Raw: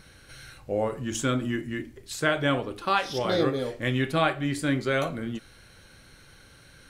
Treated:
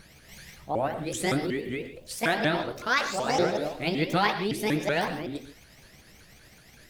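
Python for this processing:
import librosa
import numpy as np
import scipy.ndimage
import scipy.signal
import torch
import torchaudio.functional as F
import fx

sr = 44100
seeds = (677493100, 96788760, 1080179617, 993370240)

y = fx.pitch_ramps(x, sr, semitones=8.0, every_ms=188)
y = fx.rev_gated(y, sr, seeds[0], gate_ms=160, shape='rising', drr_db=9.5)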